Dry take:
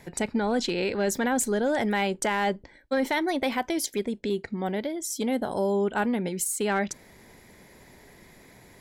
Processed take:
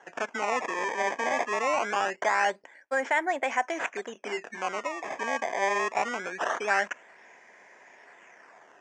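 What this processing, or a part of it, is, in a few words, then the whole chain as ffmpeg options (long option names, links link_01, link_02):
circuit-bent sampling toy: -filter_complex "[0:a]asettb=1/sr,asplit=3[link_01][link_02][link_03];[link_01]atrim=end=4.134[link_04];[link_02]atrim=start=4.13:end=4.58,asetpts=PTS-STARTPTS,afade=type=in:duration=0.004:curve=qsin,afade=type=out:start_time=0.446:duration=0.004:curve=qsin,asplit=2[link_05][link_06];[link_06]adelay=23,volume=-5dB[link_07];[link_05][link_07]amix=inputs=2:normalize=0,atrim=end_sample=19845[link_08];[link_03]atrim=start=4.576[link_09];[link_04][link_08]acrossfade=duration=0.004:curve1=hsin:curve2=qsin[link_10];[link_10][link_09]acrossfade=duration=0.004:curve1=qsin:curve2=hsin,acrusher=samples=18:mix=1:aa=0.000001:lfo=1:lforange=28.8:lforate=0.23,highpass=590,equalizer=frequency=690:width_type=q:width=4:gain=5,equalizer=frequency=1000:width_type=q:width=4:gain=3,equalizer=frequency=1700:width_type=q:width=4:gain=8,equalizer=frequency=2500:width_type=q:width=4:gain=4,equalizer=frequency=4000:width_type=q:width=4:gain=-9,lowpass=frequency=4300:width=0.5412,lowpass=frequency=4300:width=1.3066,highshelf=frequency=5300:width_type=q:width=3:gain=9"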